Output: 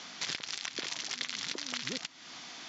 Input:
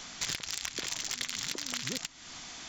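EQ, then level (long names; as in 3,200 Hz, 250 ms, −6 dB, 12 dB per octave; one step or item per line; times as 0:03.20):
high-pass filter 180 Hz 12 dB per octave
low-pass filter 5,800 Hz 24 dB per octave
0.0 dB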